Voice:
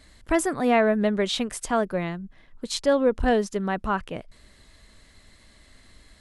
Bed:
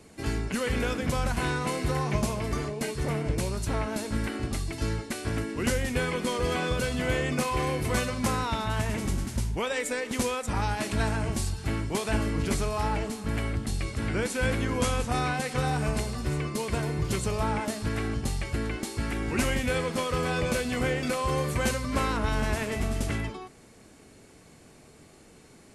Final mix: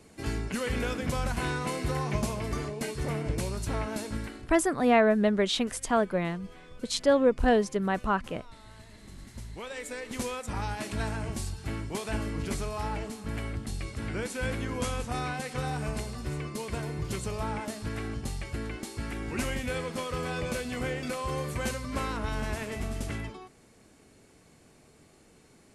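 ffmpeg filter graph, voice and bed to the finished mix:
-filter_complex "[0:a]adelay=4200,volume=-1.5dB[a];[1:a]volume=16dB,afade=t=out:st=4.02:d=0.5:silence=0.0891251,afade=t=in:st=9:d=1.33:silence=0.11885[b];[a][b]amix=inputs=2:normalize=0"

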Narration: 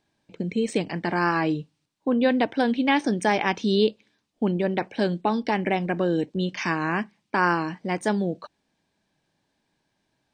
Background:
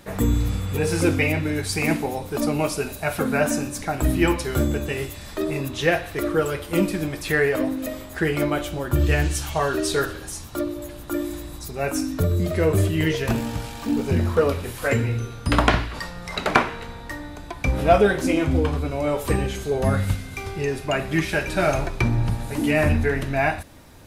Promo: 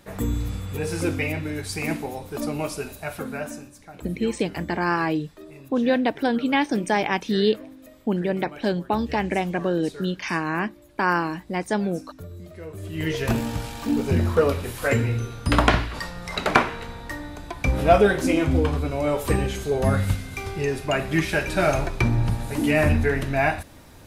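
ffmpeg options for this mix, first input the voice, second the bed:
-filter_complex "[0:a]adelay=3650,volume=0dB[a];[1:a]volume=13dB,afade=t=out:st=2.85:d=0.91:silence=0.223872,afade=t=in:st=12.81:d=0.47:silence=0.125893[b];[a][b]amix=inputs=2:normalize=0"

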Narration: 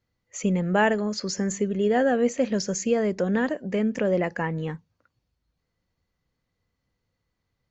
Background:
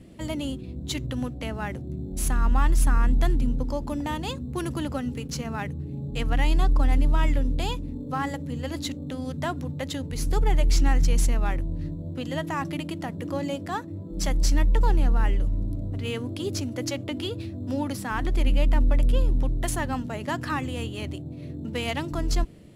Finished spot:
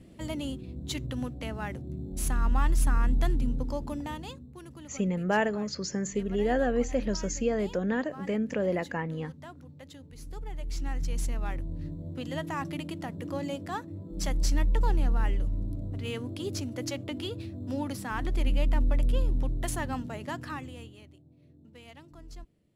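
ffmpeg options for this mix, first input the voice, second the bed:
-filter_complex "[0:a]adelay=4550,volume=-5dB[a];[1:a]volume=8.5dB,afade=t=out:st=3.81:d=0.73:silence=0.223872,afade=t=in:st=10.54:d=1.48:silence=0.237137,afade=t=out:st=20.01:d=1.07:silence=0.141254[b];[a][b]amix=inputs=2:normalize=0"

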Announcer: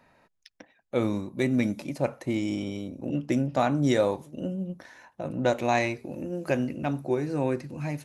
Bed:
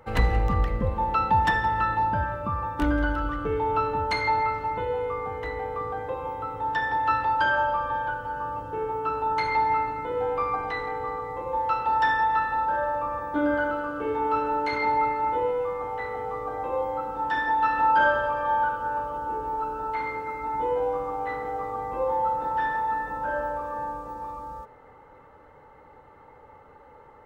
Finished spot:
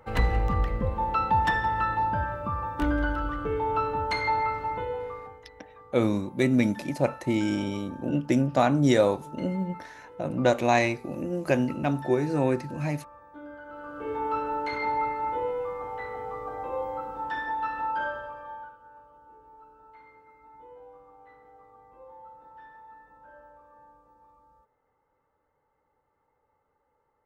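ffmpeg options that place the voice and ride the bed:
-filter_complex "[0:a]adelay=5000,volume=2.5dB[a];[1:a]volume=13.5dB,afade=t=out:st=4.73:d=0.71:silence=0.133352,afade=t=in:st=13.65:d=0.51:silence=0.16788,afade=t=out:st=16.98:d=1.8:silence=0.112202[b];[a][b]amix=inputs=2:normalize=0"

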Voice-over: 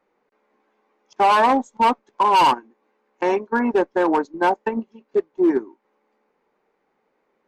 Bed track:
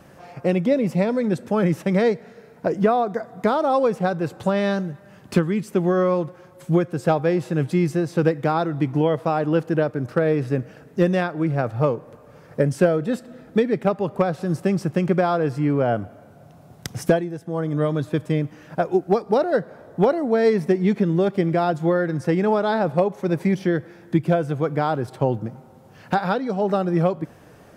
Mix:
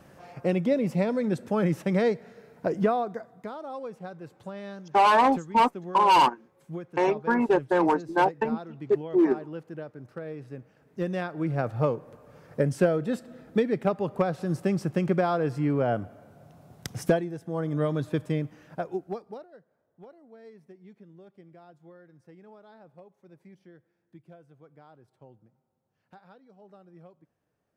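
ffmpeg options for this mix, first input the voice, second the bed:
-filter_complex "[0:a]adelay=3750,volume=-3.5dB[a];[1:a]volume=8dB,afade=t=out:st=2.82:d=0.64:silence=0.223872,afade=t=in:st=10.76:d=0.86:silence=0.223872,afade=t=out:st=18.17:d=1.31:silence=0.0473151[b];[a][b]amix=inputs=2:normalize=0"

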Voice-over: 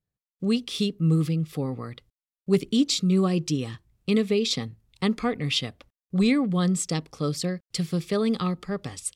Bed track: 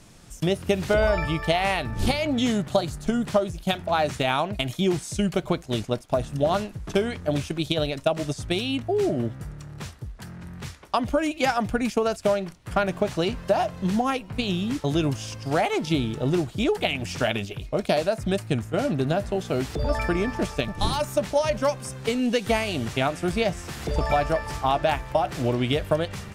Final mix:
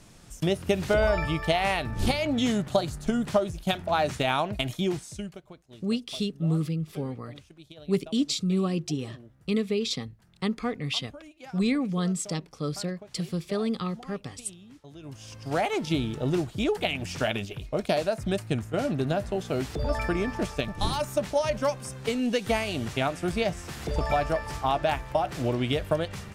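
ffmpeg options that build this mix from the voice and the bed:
-filter_complex "[0:a]adelay=5400,volume=-4dB[a];[1:a]volume=18dB,afade=t=out:st=4.66:d=0.75:silence=0.0891251,afade=t=in:st=15.01:d=0.63:silence=0.1[b];[a][b]amix=inputs=2:normalize=0"

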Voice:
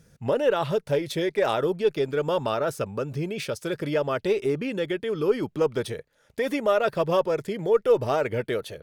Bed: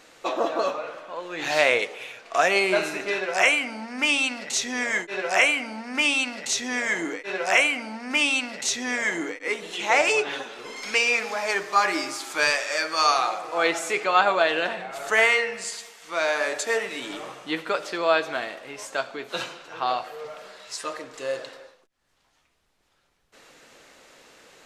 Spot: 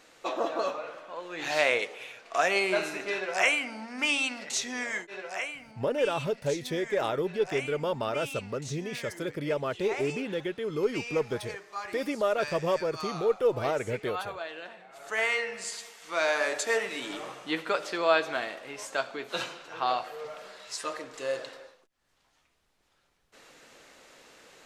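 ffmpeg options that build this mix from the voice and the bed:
-filter_complex "[0:a]adelay=5550,volume=-5dB[a];[1:a]volume=9.5dB,afade=t=out:st=4.6:d=0.89:silence=0.251189,afade=t=in:st=14.87:d=1.02:silence=0.188365[b];[a][b]amix=inputs=2:normalize=0"

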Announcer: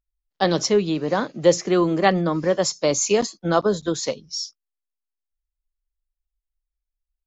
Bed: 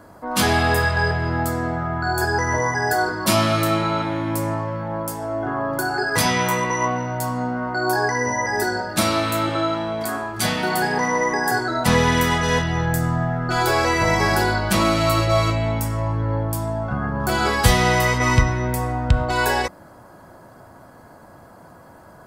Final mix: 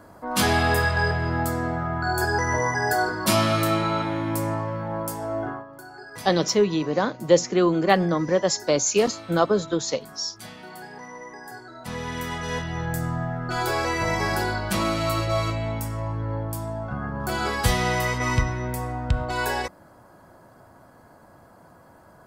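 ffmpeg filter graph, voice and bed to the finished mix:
-filter_complex "[0:a]adelay=5850,volume=-1dB[a];[1:a]volume=11dB,afade=t=out:st=5.4:d=0.25:silence=0.141254,afade=t=in:st=11.79:d=1.23:silence=0.211349[b];[a][b]amix=inputs=2:normalize=0"

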